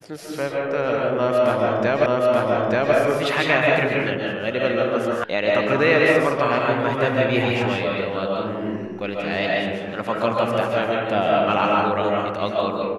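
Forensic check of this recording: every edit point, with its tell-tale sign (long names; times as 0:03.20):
0:02.06: the same again, the last 0.88 s
0:05.24: cut off before it has died away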